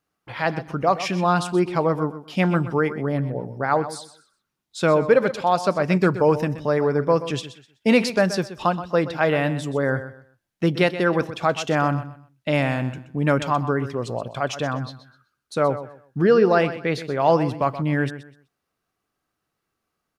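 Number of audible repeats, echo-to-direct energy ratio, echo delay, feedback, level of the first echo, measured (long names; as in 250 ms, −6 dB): 2, −12.5 dB, 126 ms, 26%, −13.0 dB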